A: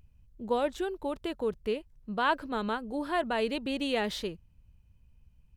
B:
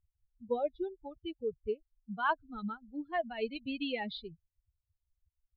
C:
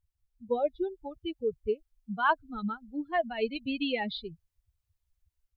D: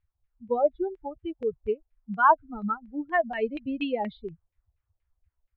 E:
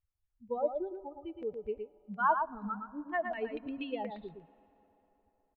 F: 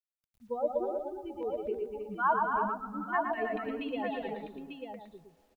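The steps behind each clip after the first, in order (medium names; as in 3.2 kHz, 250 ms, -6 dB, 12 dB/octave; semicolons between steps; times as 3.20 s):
expander on every frequency bin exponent 3; steep low-pass 4.5 kHz 96 dB/octave
level rider gain up to 5 dB
LFO low-pass saw down 4.2 Hz 560–2400 Hz; trim +1.5 dB
delay 114 ms -6 dB; on a send at -20 dB: reverberation RT60 4.1 s, pre-delay 4 ms; on the sum: trim -9 dB
on a send: multi-tap echo 126/244/315/894 ms -7.5/-6/-5.5/-6 dB; on the sum: word length cut 12-bit, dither none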